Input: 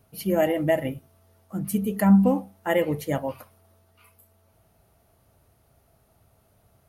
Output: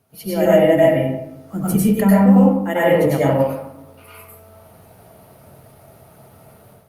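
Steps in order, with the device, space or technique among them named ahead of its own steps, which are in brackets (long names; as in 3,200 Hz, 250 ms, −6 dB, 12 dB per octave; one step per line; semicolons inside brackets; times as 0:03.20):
far-field microphone of a smart speaker (convolution reverb RT60 0.80 s, pre-delay 92 ms, DRR −8 dB; high-pass filter 110 Hz 12 dB per octave; automatic gain control gain up to 11 dB; level −1 dB; Opus 48 kbit/s 48,000 Hz)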